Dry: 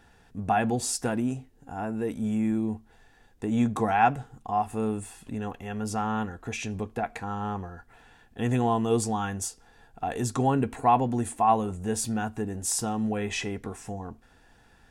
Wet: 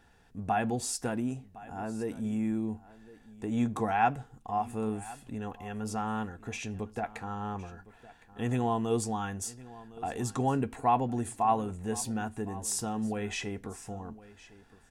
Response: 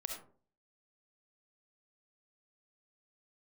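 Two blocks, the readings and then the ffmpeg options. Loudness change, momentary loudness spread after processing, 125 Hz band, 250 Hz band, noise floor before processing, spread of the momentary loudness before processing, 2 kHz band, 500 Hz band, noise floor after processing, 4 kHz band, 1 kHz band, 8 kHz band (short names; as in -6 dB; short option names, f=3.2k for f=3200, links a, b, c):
-4.5 dB, 14 LU, -4.5 dB, -4.5 dB, -59 dBFS, 14 LU, -4.5 dB, -4.5 dB, -60 dBFS, -4.5 dB, -4.5 dB, -4.5 dB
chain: -af "aecho=1:1:1061:0.112,volume=-4.5dB"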